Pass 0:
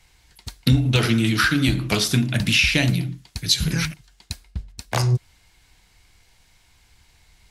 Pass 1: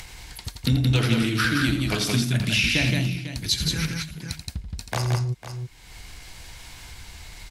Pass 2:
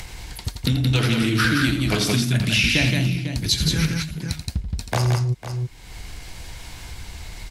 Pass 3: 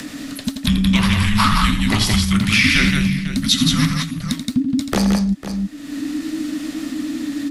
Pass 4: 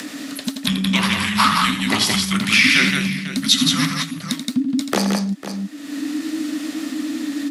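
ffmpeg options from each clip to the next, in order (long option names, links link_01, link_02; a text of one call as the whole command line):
ffmpeg -i in.wav -filter_complex "[0:a]asplit=2[link_01][link_02];[link_02]aecho=0:1:84|172|499:0.335|0.668|0.178[link_03];[link_01][link_03]amix=inputs=2:normalize=0,acompressor=mode=upward:threshold=-20dB:ratio=2.5,volume=-5dB" out.wav
ffmpeg -i in.wav -filter_complex "[0:a]acrossover=split=780[link_01][link_02];[link_01]alimiter=limit=-20dB:level=0:latency=1:release=324[link_03];[link_02]flanger=delay=4.9:depth=6.8:regen=-80:speed=1.7:shape=sinusoidal[link_04];[link_03][link_04]amix=inputs=2:normalize=0,volume=7dB" out.wav
ffmpeg -i in.wav -af "asubboost=boost=2:cutoff=74,afreqshift=-320,volume=4.5dB" out.wav
ffmpeg -i in.wav -af "highpass=250,volume=1.5dB" out.wav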